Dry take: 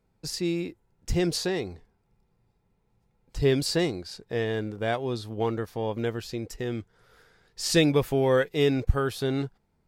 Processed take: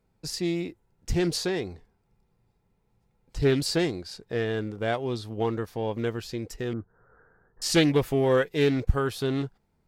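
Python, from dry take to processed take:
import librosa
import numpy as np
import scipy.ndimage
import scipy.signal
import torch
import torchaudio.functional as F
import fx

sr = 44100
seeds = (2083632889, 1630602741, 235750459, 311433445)

y = fx.steep_lowpass(x, sr, hz=1700.0, slope=72, at=(6.73, 7.62))
y = fx.doppler_dist(y, sr, depth_ms=0.57)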